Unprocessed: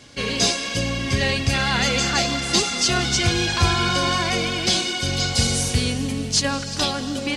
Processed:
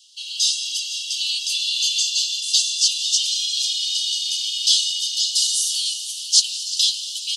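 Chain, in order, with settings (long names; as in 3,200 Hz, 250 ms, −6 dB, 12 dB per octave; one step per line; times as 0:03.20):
automatic gain control
Butterworth high-pass 2,900 Hz 96 dB per octave
on a send: repeating echo 499 ms, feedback 55%, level −12 dB
on the sum: level −1 dB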